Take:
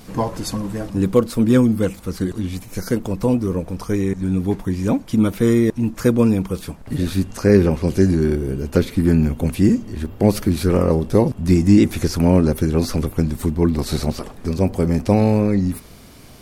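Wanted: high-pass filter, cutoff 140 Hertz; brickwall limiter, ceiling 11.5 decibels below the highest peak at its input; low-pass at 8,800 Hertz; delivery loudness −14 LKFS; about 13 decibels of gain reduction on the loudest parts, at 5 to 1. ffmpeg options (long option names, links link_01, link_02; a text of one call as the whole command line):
ffmpeg -i in.wav -af "highpass=140,lowpass=8800,acompressor=threshold=-24dB:ratio=5,volume=18.5dB,alimiter=limit=-3.5dB:level=0:latency=1" out.wav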